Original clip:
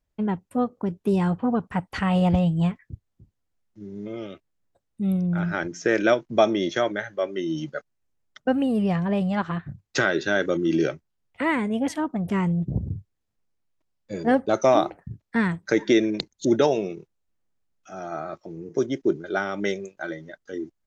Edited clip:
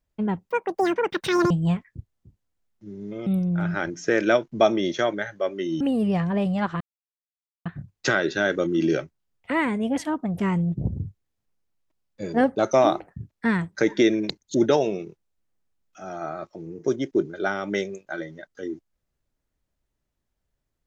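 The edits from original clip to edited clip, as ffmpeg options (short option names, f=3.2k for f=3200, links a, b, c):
-filter_complex "[0:a]asplit=6[a][b][c][d][e][f];[a]atrim=end=0.504[g];[b]atrim=start=0.5:end=2.45,asetpts=PTS-STARTPTS,asetrate=85554,aresample=44100,atrim=end_sample=44327,asetpts=PTS-STARTPTS[h];[c]atrim=start=2.446:end=4.212[i];[d]atrim=start=5.038:end=7.582[j];[e]atrim=start=8.558:end=9.56,asetpts=PTS-STARTPTS,afade=t=out:st=0.998:d=0.004:c=hsin,apad=pad_dur=0.85[k];[f]atrim=start=9.56,asetpts=PTS-STARTPTS,afade=t=in:d=0.004:c=hsin[l];[g][h]acrossfade=d=0.004:c1=hsin:c2=hsin[m];[m][i]acrossfade=d=0.004:c1=hsin:c2=hsin[n];[n][j]acrossfade=d=0.004:c1=hsin:c2=hsin[o];[k][l]concat=n=2:v=0:a=1[p];[o][p]acrossfade=d=0.004:c1=hsin:c2=hsin"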